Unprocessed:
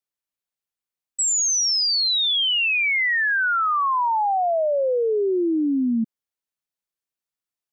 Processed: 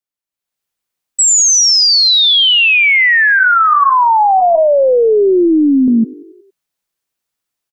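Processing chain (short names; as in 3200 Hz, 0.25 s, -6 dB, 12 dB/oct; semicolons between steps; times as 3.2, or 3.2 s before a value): AGC gain up to 12.5 dB; frequency-shifting echo 92 ms, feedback 61%, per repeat +33 Hz, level -21 dB; 3.39–5.88 LPC vocoder at 8 kHz pitch kept; gain -1 dB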